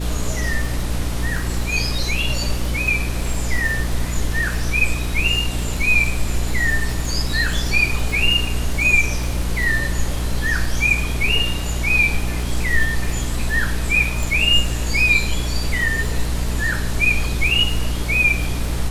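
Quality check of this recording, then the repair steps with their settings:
crackle 40 per s -25 dBFS
hum 60 Hz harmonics 5 -24 dBFS
14.23 s: pop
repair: de-click; de-hum 60 Hz, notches 5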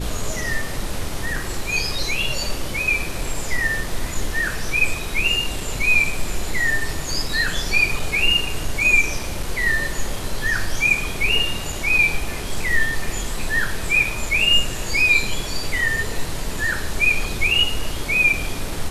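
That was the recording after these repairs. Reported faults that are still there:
nothing left

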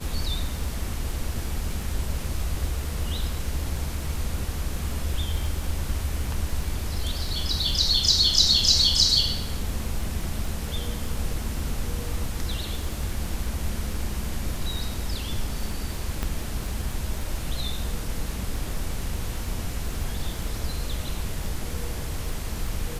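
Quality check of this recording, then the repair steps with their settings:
crackle 21 per s -31 dBFS
16.23 s: pop -13 dBFS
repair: de-click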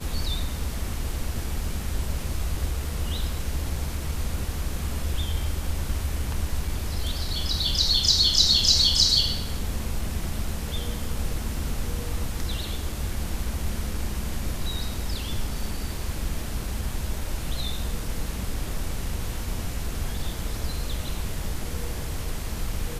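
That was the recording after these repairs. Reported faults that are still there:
16.23 s: pop

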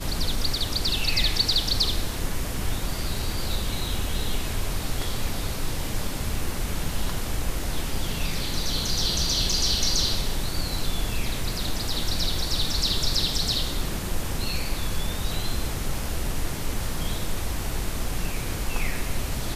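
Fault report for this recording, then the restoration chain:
9.52 s: dropout 3.2 ms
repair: interpolate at 9.52 s, 3.2 ms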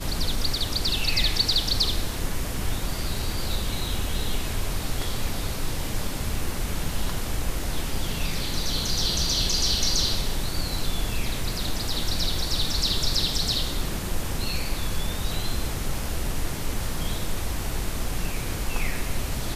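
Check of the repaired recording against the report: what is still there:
nothing left

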